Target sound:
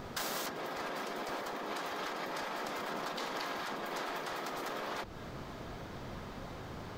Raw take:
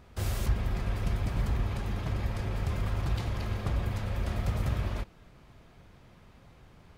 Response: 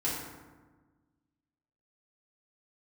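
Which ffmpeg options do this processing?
-af "equalizer=frequency=160:width_type=o:width=0.67:gain=-6,equalizer=frequency=2500:width_type=o:width=0.67:gain=-6,equalizer=frequency=10000:width_type=o:width=0.67:gain=-8,acompressor=threshold=-38dB:ratio=6,afftfilt=real='re*lt(hypot(re,im),0.0126)':imag='im*lt(hypot(re,im),0.0126)':win_size=1024:overlap=0.75,volume=15dB"

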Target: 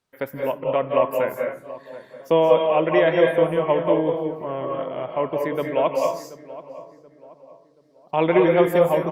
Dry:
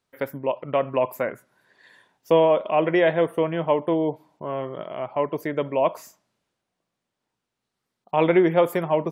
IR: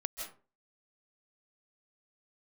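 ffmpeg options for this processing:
-filter_complex "[0:a]asettb=1/sr,asplit=3[link_01][link_02][link_03];[link_01]atrim=end=5.754[link_04];[link_02]atrim=start=5.75:end=8.18,asetpts=PTS-STARTPTS,afade=type=in:duration=0.004:curve=qsin,afade=type=out:start_time=2.426:duration=0.004:curve=qsin,equalizer=frequency=5100:width_type=o:width=0.77:gain=9.5[link_05];[link_03]atrim=start=8.176[link_06];[link_04][link_05]acrossfade=duration=0.004:curve1=hsin:curve2=qsin[link_07];[link_07][link_06]acrossfade=duration=0.004:curve1=qsin:curve2=hsin,asplit=2[link_08][link_09];[link_09]adelay=730,lowpass=frequency=1500:poles=1,volume=-16dB,asplit=2[link_10][link_11];[link_11]adelay=730,lowpass=frequency=1500:poles=1,volume=0.41,asplit=2[link_12][link_13];[link_13]adelay=730,lowpass=frequency=1500:poles=1,volume=0.41,asplit=2[link_14][link_15];[link_15]adelay=730,lowpass=frequency=1500:poles=1,volume=0.41[link_16];[link_08][link_10][link_12][link_14][link_16]amix=inputs=5:normalize=0[link_17];[1:a]atrim=start_sample=2205,asetrate=37485,aresample=44100[link_18];[link_17][link_18]afir=irnorm=-1:irlink=0" -ar 48000 -c:a libopus -b:a 64k

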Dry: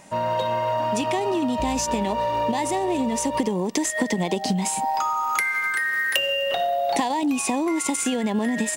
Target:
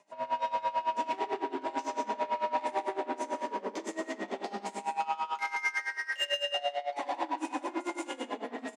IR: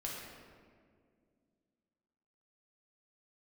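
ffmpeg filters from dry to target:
-filter_complex "[0:a]acrossover=split=4600[link_01][link_02];[link_01]volume=18.5dB,asoftclip=hard,volume=-18.5dB[link_03];[link_03][link_02]amix=inputs=2:normalize=0,afreqshift=18[link_04];[1:a]atrim=start_sample=2205,asetrate=61740,aresample=44100[link_05];[link_04][link_05]afir=irnorm=-1:irlink=0,asplit=2[link_06][link_07];[link_07]adynamicsmooth=sensitivity=5:basefreq=730,volume=0.5dB[link_08];[link_06][link_08]amix=inputs=2:normalize=0,lowpass=6300,asoftclip=type=tanh:threshold=-15dB,highpass=450,aecho=1:1:119.5|177.8:0.282|0.447,aeval=exprs='val(0)*pow(10,-19*(0.5-0.5*cos(2*PI*9*n/s))/20)':channel_layout=same,volume=-6.5dB"

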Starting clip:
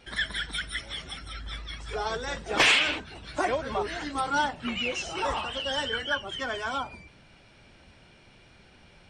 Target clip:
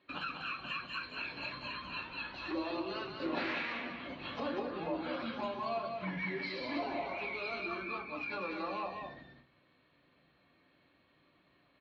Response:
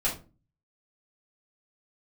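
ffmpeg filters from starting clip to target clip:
-filter_complex "[0:a]agate=range=-15dB:threshold=-48dB:ratio=16:detection=peak,asplit=2[link_01][link_02];[link_02]highpass=frequency=720:poles=1,volume=10dB,asoftclip=type=tanh:threshold=-13dB[link_03];[link_01][link_03]amix=inputs=2:normalize=0,lowpass=frequency=3400:poles=1,volume=-6dB,acompressor=threshold=-37dB:ratio=4,aemphasis=mode=reproduction:type=50fm,asetrate=33957,aresample=44100,highpass=130,equalizer=frequency=290:width_type=q:width=4:gain=5,equalizer=frequency=450:width_type=q:width=4:gain=-7,equalizer=frequency=800:width_type=q:width=4:gain=-5,equalizer=frequency=1300:width_type=q:width=4:gain=-6,equalizer=frequency=1900:width_type=q:width=4:gain=-6,equalizer=frequency=4100:width_type=q:width=4:gain=9,lowpass=frequency=5000:width=0.5412,lowpass=frequency=5000:width=1.3066,aecho=1:1:194:0.531,asplit=2[link_04][link_05];[1:a]atrim=start_sample=2205,lowshelf=frequency=86:gain=7[link_06];[link_05][link_06]afir=irnorm=-1:irlink=0,volume=-9.5dB[link_07];[link_04][link_07]amix=inputs=2:normalize=0,volume=-2dB"

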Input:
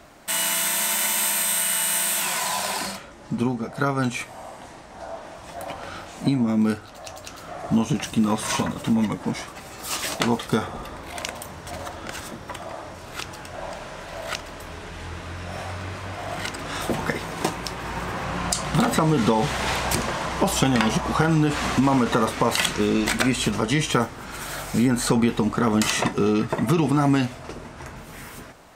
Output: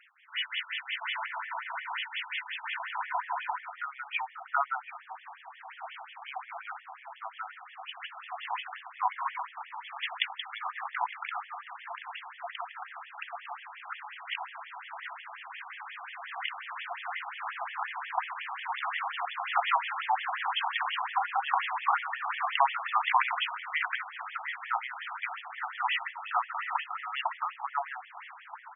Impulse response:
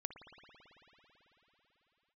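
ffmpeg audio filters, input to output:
-filter_complex "[0:a]asettb=1/sr,asplit=3[link_01][link_02][link_03];[link_01]atrim=end=1.264[link_04];[link_02]atrim=start=1.26:end=1.91,asetpts=PTS-STARTPTS,afade=type=in:duration=0.004:curve=qsin,afade=type=out:start_time=0.646:duration=0.004:curve=qsin,asplit=3[link_05][link_06][link_07];[link_05]bandpass=frequency=300:width_type=q:width=8,volume=0dB[link_08];[link_06]bandpass=frequency=870:width_type=q:width=8,volume=-6dB[link_09];[link_07]bandpass=frequency=2240:width_type=q:width=8,volume=-9dB[link_10];[link_08][link_09][link_10]amix=inputs=3:normalize=0[link_11];[link_03]atrim=start=1.906[link_12];[link_04][link_11]acrossfade=duration=0.004:curve1=hsin:curve2=qsin[link_13];[link_13][link_12]acrossfade=duration=0.004:curve1=qsin:curve2=hsin,acrossover=split=200|1700[link_14][link_15][link_16];[link_14]adelay=30[link_17];[link_15]adelay=730[link_18];[link_17][link_18][link_16]amix=inputs=3:normalize=0,afftfilt=real='re*between(b*sr/1024,930*pow(2500/930,0.5+0.5*sin(2*PI*5.6*pts/sr))/1.41,930*pow(2500/930,0.5+0.5*sin(2*PI*5.6*pts/sr))*1.41)':imag='im*between(b*sr/1024,930*pow(2500/930,0.5+0.5*sin(2*PI*5.6*pts/sr))/1.41,930*pow(2500/930,0.5+0.5*sin(2*PI*5.6*pts/sr))*1.41)':win_size=1024:overlap=0.75,volume=2dB"

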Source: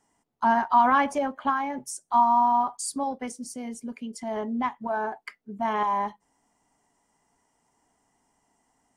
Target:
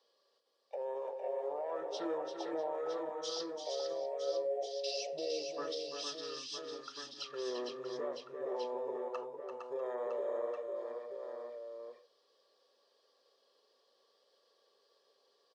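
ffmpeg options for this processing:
ffmpeg -i in.wav -af "highpass=frequency=680:width=0.5412,highpass=frequency=680:width=1.3066,acompressor=threshold=-28dB:ratio=6,alimiter=level_in=5.5dB:limit=-24dB:level=0:latency=1:release=81,volume=-5.5dB,aecho=1:1:197|265|373|554|803:0.422|0.562|0.141|0.376|0.376,asetrate=25442,aresample=44100,volume=-2.5dB" out.wav

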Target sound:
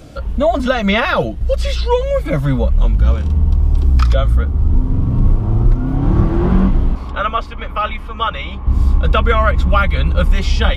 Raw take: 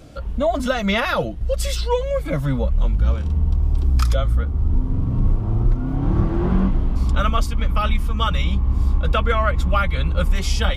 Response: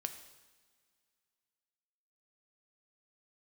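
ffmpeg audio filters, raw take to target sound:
-filter_complex "[0:a]acrossover=split=4800[link_01][link_02];[link_02]acompressor=threshold=-51dB:ratio=4:attack=1:release=60[link_03];[link_01][link_03]amix=inputs=2:normalize=0,asettb=1/sr,asplit=3[link_04][link_05][link_06];[link_04]atrim=end=6.954[link_07];[link_05]atrim=start=6.95:end=8.67,asetpts=PTS-STARTPTS,afade=type=in:duration=0.004:curve=qsin,afade=type=out:start_time=1.716:duration=0.004:curve=qsin,acrossover=split=380 3300:gain=0.224 1 0.251[link_08][link_09][link_10];[link_08][link_09][link_10]amix=inputs=3:normalize=0[link_11];[link_06]atrim=start=8.666[link_12];[link_07][link_11]acrossfade=duration=0.004:curve1=hsin:curve2=qsin[link_13];[link_13][link_12]acrossfade=duration=0.004:curve1=qsin:curve2=hsin,volume=5.5dB"

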